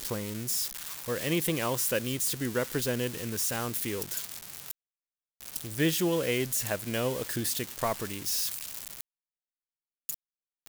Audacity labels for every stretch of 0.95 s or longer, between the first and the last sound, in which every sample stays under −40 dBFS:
9.010000	10.090000	silence